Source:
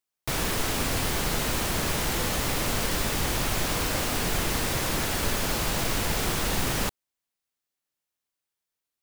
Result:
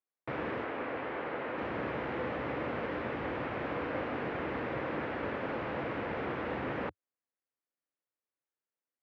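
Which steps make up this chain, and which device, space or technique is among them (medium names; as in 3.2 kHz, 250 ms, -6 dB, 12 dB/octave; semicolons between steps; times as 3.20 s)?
0.64–1.58 s: tone controls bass -10 dB, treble -7 dB; bass cabinet (cabinet simulation 85–2200 Hz, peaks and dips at 97 Hz -10 dB, 170 Hz -7 dB, 300 Hz +4 dB, 510 Hz +6 dB); trim -6 dB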